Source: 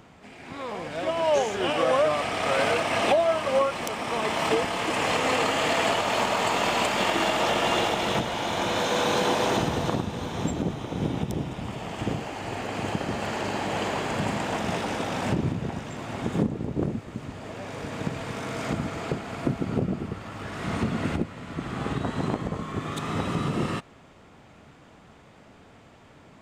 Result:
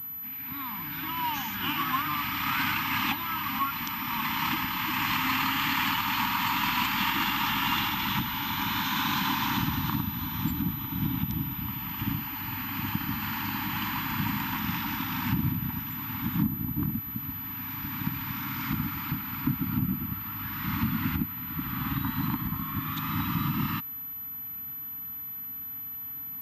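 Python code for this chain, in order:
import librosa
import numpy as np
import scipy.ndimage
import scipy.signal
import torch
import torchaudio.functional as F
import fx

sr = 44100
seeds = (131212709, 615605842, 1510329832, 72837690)

y = scipy.signal.sosfilt(scipy.signal.ellip(3, 1.0, 40, [290.0, 930.0], 'bandstop', fs=sr, output='sos'), x)
y = fx.pwm(y, sr, carrier_hz=12000.0)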